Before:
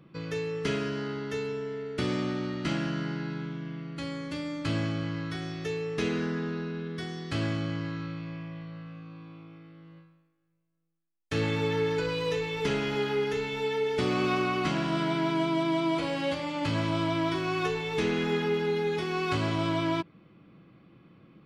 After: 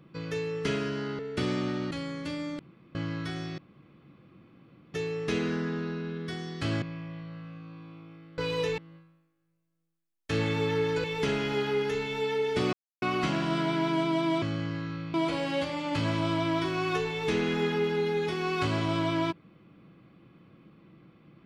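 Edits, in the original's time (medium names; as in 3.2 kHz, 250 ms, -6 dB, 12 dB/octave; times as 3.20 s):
1.19–1.80 s: delete
2.52–3.97 s: delete
4.65–5.01 s: room tone
5.64 s: insert room tone 1.36 s
7.52–8.24 s: move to 15.84 s
12.06–12.46 s: move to 9.80 s
14.15–14.44 s: mute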